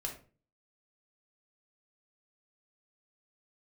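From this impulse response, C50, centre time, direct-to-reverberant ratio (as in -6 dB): 8.0 dB, 19 ms, 0.5 dB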